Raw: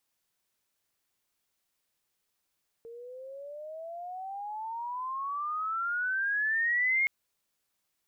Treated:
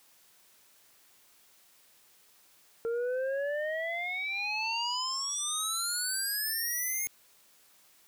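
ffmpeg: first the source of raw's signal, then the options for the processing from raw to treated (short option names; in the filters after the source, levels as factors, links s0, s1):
-f lavfi -i "aevalsrc='pow(10,(-23+19.5*(t/4.22-1))/20)*sin(2*PI*456*4.22/(27*log(2)/12)*(exp(27*log(2)/12*t/4.22)-1))':d=4.22:s=44100"
-af "lowshelf=f=150:g=-8.5,alimiter=level_in=2:limit=0.0631:level=0:latency=1:release=25,volume=0.501,aeval=exprs='0.0316*sin(PI/2*5.01*val(0)/0.0316)':c=same"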